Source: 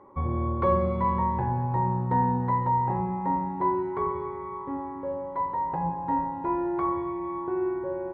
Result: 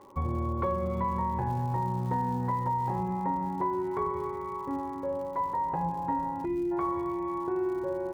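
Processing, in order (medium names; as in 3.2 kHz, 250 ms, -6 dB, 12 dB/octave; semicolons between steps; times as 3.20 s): 6.45–6.72 s: time-frequency box 400–1900 Hz -21 dB; compression, threshold -26 dBFS, peak gain reduction 8 dB; crackle 140 per s -45 dBFS, from 1.49 s 410 per s, from 3.02 s 150 per s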